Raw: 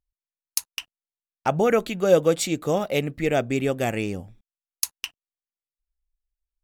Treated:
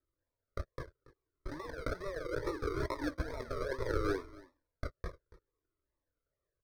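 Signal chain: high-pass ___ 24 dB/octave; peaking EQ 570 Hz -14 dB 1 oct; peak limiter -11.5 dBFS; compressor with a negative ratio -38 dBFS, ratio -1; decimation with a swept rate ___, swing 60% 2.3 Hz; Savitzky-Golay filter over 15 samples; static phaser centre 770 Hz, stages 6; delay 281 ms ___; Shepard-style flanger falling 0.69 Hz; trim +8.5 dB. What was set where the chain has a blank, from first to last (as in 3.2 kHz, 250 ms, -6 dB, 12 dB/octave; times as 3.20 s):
330 Hz, 40×, -19.5 dB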